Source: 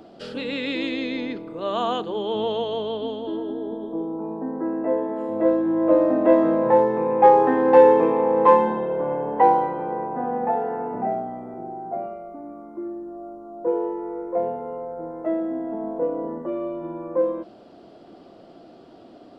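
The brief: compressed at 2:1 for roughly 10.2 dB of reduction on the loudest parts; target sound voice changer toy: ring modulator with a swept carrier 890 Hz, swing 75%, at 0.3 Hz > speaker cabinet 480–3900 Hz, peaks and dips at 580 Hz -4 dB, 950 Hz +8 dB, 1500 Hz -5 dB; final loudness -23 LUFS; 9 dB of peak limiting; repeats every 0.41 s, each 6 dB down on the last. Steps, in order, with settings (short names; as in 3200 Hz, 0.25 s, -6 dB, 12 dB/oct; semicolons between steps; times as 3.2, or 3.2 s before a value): compressor 2:1, threshold -27 dBFS; limiter -21 dBFS; feedback echo 0.41 s, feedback 50%, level -6 dB; ring modulator with a swept carrier 890 Hz, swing 75%, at 0.3 Hz; speaker cabinet 480–3900 Hz, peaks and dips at 580 Hz -4 dB, 950 Hz +8 dB, 1500 Hz -5 dB; gain +8 dB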